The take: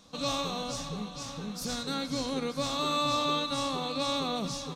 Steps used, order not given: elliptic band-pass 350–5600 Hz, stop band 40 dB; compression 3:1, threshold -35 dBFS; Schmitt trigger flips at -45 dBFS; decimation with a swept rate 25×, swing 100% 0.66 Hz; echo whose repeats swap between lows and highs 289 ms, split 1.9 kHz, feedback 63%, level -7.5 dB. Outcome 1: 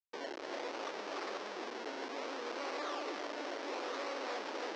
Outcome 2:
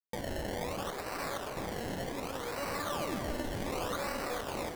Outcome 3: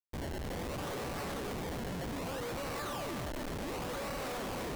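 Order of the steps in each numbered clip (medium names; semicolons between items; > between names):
decimation with a swept rate > echo whose repeats swap between lows and highs > compression > Schmitt trigger > elliptic band-pass; Schmitt trigger > compression > elliptic band-pass > decimation with a swept rate > echo whose repeats swap between lows and highs; elliptic band-pass > decimation with a swept rate > compression > echo whose repeats swap between lows and highs > Schmitt trigger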